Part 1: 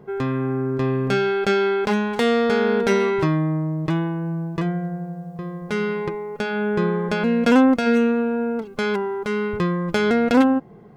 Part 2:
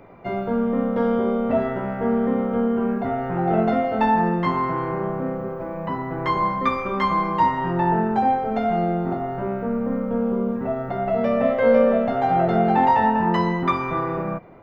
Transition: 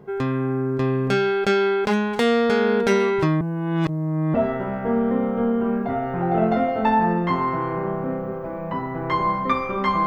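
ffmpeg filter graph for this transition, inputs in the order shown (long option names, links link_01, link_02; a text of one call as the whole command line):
ffmpeg -i cue0.wav -i cue1.wav -filter_complex "[0:a]apad=whole_dur=10.06,atrim=end=10.06,asplit=2[link_01][link_02];[link_01]atrim=end=3.412[link_03];[link_02]atrim=start=3.408:end=4.342,asetpts=PTS-STARTPTS,areverse[link_04];[1:a]atrim=start=1.498:end=7.22[link_05];[link_03][link_04]acrossfade=duration=0.004:curve1=hsin:curve2=hsin[link_06];[link_06][link_05]acrossfade=duration=0.004:curve1=hsin:curve2=hsin" out.wav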